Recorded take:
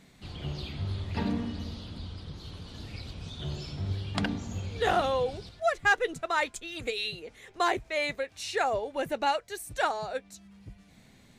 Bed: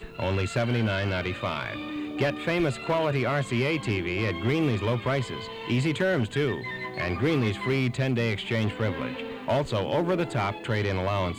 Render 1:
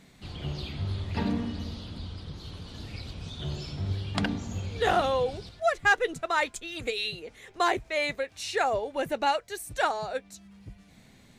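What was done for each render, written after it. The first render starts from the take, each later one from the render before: gain +1.5 dB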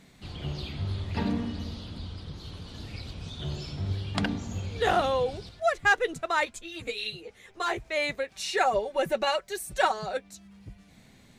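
6.45–7.78 ensemble effect; 8.3–10.17 comb 5.3 ms, depth 76%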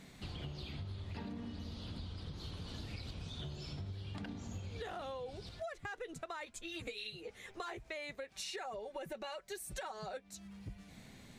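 limiter -22 dBFS, peak gain reduction 11 dB; compressor 10:1, threshold -41 dBFS, peak gain reduction 15.5 dB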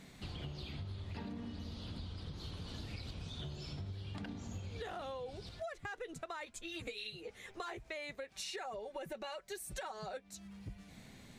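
nothing audible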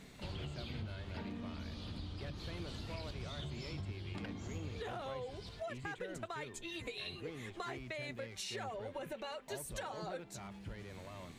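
add bed -24 dB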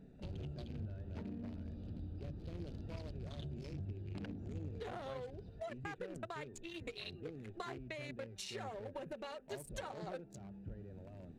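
Wiener smoothing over 41 samples; notches 60/120 Hz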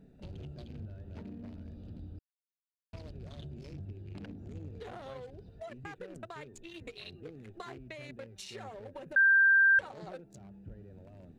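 2.19–2.93 mute; 9.16–9.79 bleep 1580 Hz -19.5 dBFS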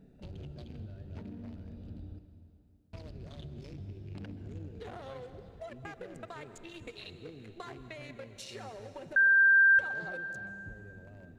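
plate-style reverb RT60 2.9 s, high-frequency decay 0.9×, pre-delay 0.115 s, DRR 10.5 dB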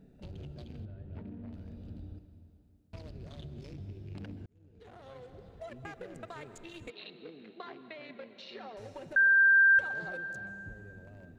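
0.85–1.53 air absorption 320 m; 4.46–5.69 fade in; 6.9–8.77 elliptic band-pass 190–4100 Hz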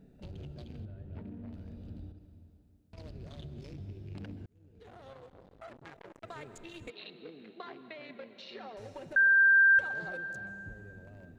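2.11–2.98 compressor, threshold -47 dBFS; 5.13–6.24 core saturation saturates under 2000 Hz

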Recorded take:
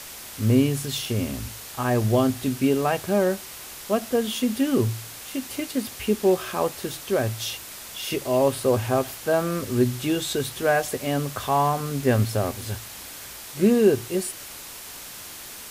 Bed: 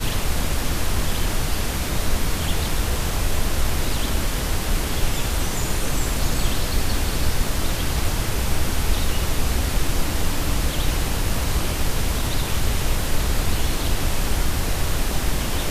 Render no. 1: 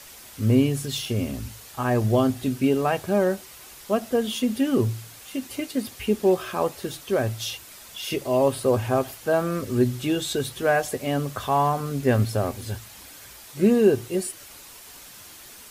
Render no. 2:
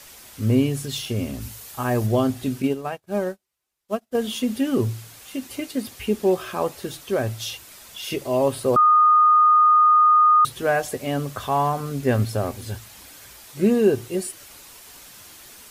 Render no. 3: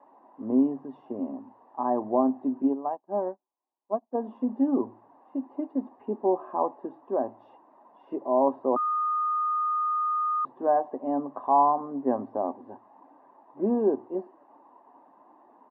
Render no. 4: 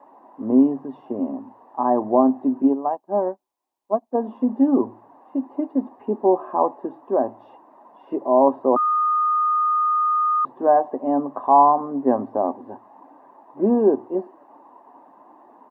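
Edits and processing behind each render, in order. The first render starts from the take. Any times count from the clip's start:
denoiser 7 dB, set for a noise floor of -40 dBFS
1.41–2.07 high shelf 9000 Hz +8.5 dB; 2.62–4.15 upward expander 2.5:1, over -42 dBFS; 8.76–10.45 bleep 1230 Hz -11.5 dBFS
Chebyshev band-pass 270–1000 Hz, order 3; comb 1.1 ms, depth 57%
gain +7 dB

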